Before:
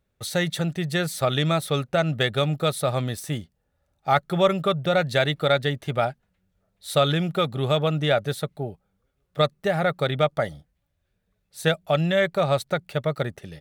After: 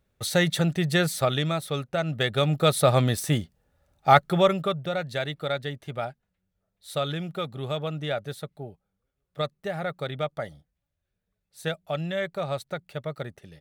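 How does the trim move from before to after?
1.06 s +2 dB
1.53 s -5 dB
2.03 s -5 dB
2.83 s +4.5 dB
4.09 s +4.5 dB
4.97 s -8 dB

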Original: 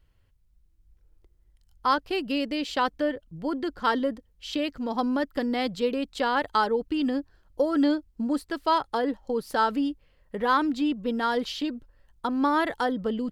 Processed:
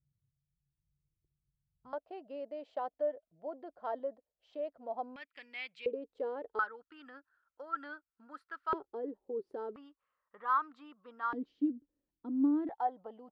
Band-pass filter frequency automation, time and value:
band-pass filter, Q 7.5
140 Hz
from 1.93 s 650 Hz
from 5.16 s 2.4 kHz
from 5.86 s 450 Hz
from 6.59 s 1.4 kHz
from 8.73 s 390 Hz
from 9.76 s 1.2 kHz
from 11.33 s 290 Hz
from 12.69 s 780 Hz

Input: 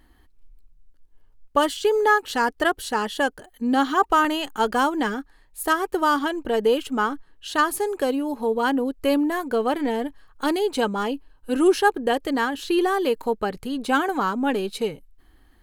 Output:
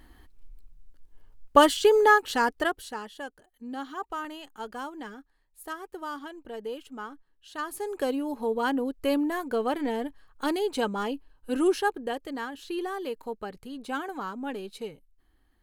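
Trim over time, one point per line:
1.57 s +3 dB
2.56 s -3.5 dB
3.13 s -16 dB
7.51 s -16 dB
8.00 s -5 dB
11.58 s -5 dB
12.27 s -11.5 dB

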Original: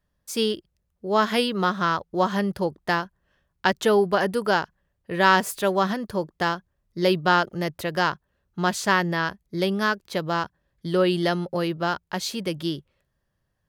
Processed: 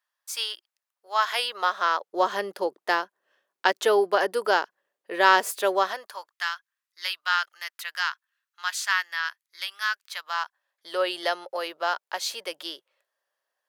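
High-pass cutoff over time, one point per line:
high-pass 24 dB/octave
1.11 s 870 Hz
2.25 s 370 Hz
5.75 s 370 Hz
6.37 s 1.3 kHz
10.06 s 1.3 kHz
10.99 s 540 Hz

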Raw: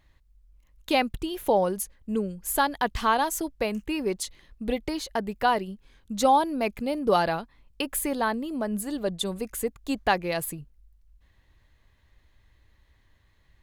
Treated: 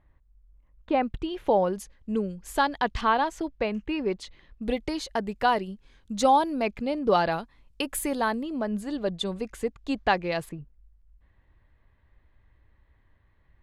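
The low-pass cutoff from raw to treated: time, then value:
1.4 kHz
from 1.03 s 3.4 kHz
from 1.73 s 5.6 kHz
from 3.01 s 3.4 kHz
from 4.63 s 8.4 kHz
from 6.62 s 5.1 kHz
from 7.32 s 11 kHz
from 8.43 s 5 kHz
from 10.49 s 1.9 kHz

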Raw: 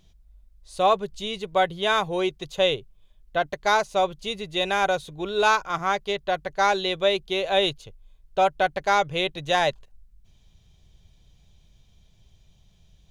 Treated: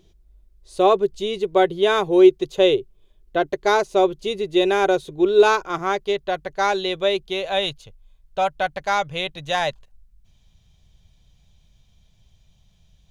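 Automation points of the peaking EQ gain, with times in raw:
peaking EQ 370 Hz 0.67 oct
5.55 s +15 dB
6.38 s +4 dB
7.19 s +4 dB
7.64 s -5.5 dB

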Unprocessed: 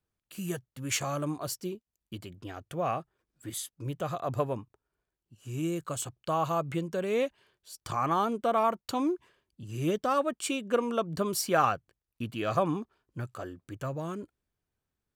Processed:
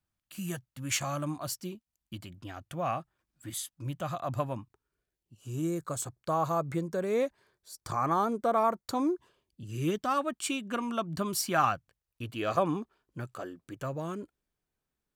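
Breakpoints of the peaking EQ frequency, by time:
peaking EQ -13.5 dB 0.39 oct
4.59 s 430 Hz
5.70 s 2.9 kHz
9.12 s 2.9 kHz
10.01 s 480 Hz
11.69 s 480 Hz
12.77 s 92 Hz

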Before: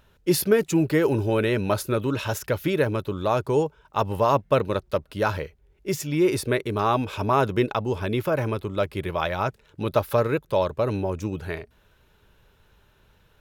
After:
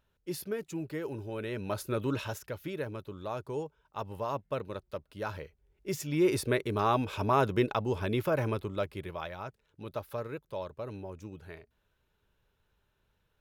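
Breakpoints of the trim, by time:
1.30 s -16 dB
2.13 s -5.5 dB
2.45 s -14 dB
5.10 s -14 dB
6.27 s -5 dB
8.56 s -5 dB
9.42 s -15.5 dB

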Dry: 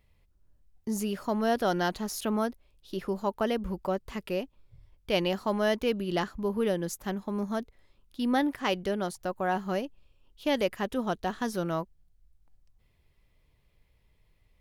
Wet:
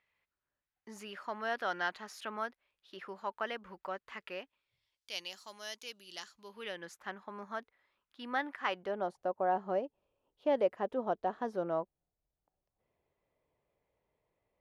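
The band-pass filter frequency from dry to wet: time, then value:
band-pass filter, Q 1.3
4.41 s 1.7 kHz
5.13 s 6.2 kHz
6.26 s 6.2 kHz
6.92 s 1.5 kHz
8.63 s 1.5 kHz
9.11 s 620 Hz

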